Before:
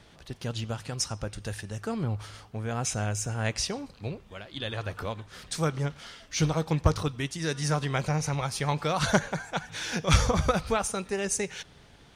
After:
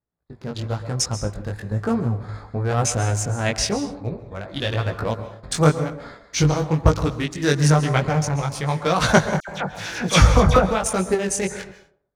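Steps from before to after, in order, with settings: local Wiener filter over 15 samples; chorus 1 Hz, delay 16.5 ms, depth 4.9 ms; random-step tremolo; gate -56 dBFS, range -27 dB; band-passed feedback delay 121 ms, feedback 41%, band-pass 590 Hz, level -14 dB; on a send at -12 dB: reverberation, pre-delay 128 ms; on the sum: level rider gain up to 11 dB; 9.40–10.71 s: phase dispersion lows, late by 79 ms, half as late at 2.1 kHz; trim +3.5 dB

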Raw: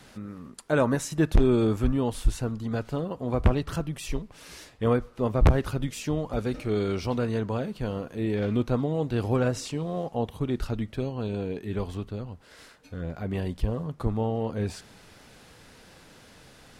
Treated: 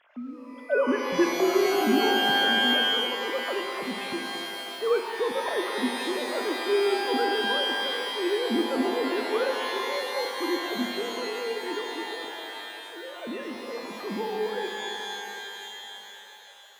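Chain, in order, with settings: formants replaced by sine waves; pitch-shifted reverb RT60 3.3 s, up +12 st, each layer -2 dB, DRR 4 dB; trim -4 dB

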